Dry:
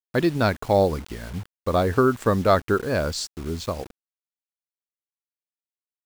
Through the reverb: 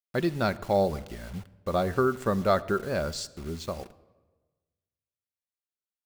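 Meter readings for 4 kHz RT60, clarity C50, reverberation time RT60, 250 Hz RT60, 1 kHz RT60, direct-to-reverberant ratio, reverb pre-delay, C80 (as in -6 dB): 0.85 s, 19.0 dB, 1.3 s, 1.3 s, 1.2 s, 10.5 dB, 5 ms, 20.0 dB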